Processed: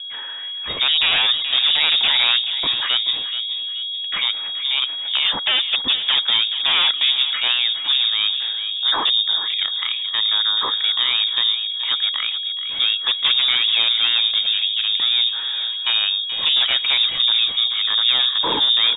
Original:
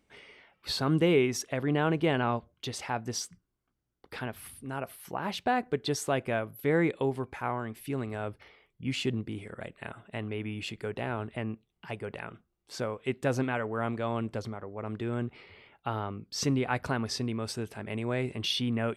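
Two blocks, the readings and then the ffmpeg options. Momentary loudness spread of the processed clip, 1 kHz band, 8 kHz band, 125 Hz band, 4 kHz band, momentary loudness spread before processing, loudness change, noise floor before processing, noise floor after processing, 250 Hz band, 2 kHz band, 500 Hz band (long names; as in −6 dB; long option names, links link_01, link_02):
7 LU, +5.0 dB, below −40 dB, below −15 dB, +27.0 dB, 13 LU, +15.5 dB, −79 dBFS, −27 dBFS, below −10 dB, +13.0 dB, −8.0 dB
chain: -filter_complex "[0:a]equalizer=frequency=75:width_type=o:width=0.36:gain=10,aeval=exprs='0.2*sin(PI/2*3.98*val(0)/0.2)':channel_layout=same,aeval=exprs='val(0)+0.0355*sin(2*PI*480*n/s)':channel_layout=same,asplit=2[link_01][link_02];[link_02]adelay=429,lowpass=frequency=1300:poles=1,volume=-8dB,asplit=2[link_03][link_04];[link_04]adelay=429,lowpass=frequency=1300:poles=1,volume=0.55,asplit=2[link_05][link_06];[link_06]adelay=429,lowpass=frequency=1300:poles=1,volume=0.55,asplit=2[link_07][link_08];[link_08]adelay=429,lowpass=frequency=1300:poles=1,volume=0.55,asplit=2[link_09][link_10];[link_10]adelay=429,lowpass=frequency=1300:poles=1,volume=0.55,asplit=2[link_11][link_12];[link_12]adelay=429,lowpass=frequency=1300:poles=1,volume=0.55,asplit=2[link_13][link_14];[link_14]adelay=429,lowpass=frequency=1300:poles=1,volume=0.55[link_15];[link_03][link_05][link_07][link_09][link_11][link_13][link_15]amix=inputs=7:normalize=0[link_16];[link_01][link_16]amix=inputs=2:normalize=0,lowpass=frequency=3200:width_type=q:width=0.5098,lowpass=frequency=3200:width_type=q:width=0.6013,lowpass=frequency=3200:width_type=q:width=0.9,lowpass=frequency=3200:width_type=q:width=2.563,afreqshift=-3800"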